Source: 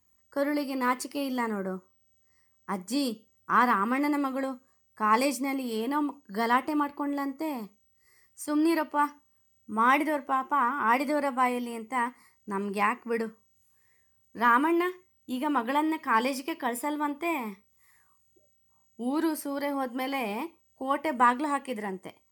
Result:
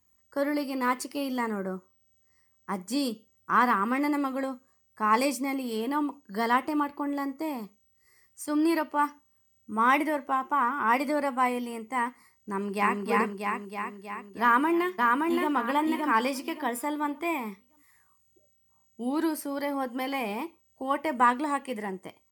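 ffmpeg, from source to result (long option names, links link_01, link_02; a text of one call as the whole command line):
ffmpeg -i in.wav -filter_complex "[0:a]asplit=2[link_01][link_02];[link_02]afade=type=in:start_time=12.5:duration=0.01,afade=type=out:start_time=13:duration=0.01,aecho=0:1:320|640|960|1280|1600|1920|2240|2560|2880|3200|3520:0.891251|0.579313|0.376554|0.24476|0.159094|0.103411|0.0672172|0.0436912|0.0283992|0.0184595|0.0119987[link_03];[link_01][link_03]amix=inputs=2:normalize=0,asplit=2[link_04][link_05];[link_05]afade=type=in:start_time=14.41:duration=0.01,afade=type=out:start_time=15.54:duration=0.01,aecho=0:1:570|1140|1710|2280:0.794328|0.198582|0.0496455|0.0124114[link_06];[link_04][link_06]amix=inputs=2:normalize=0" out.wav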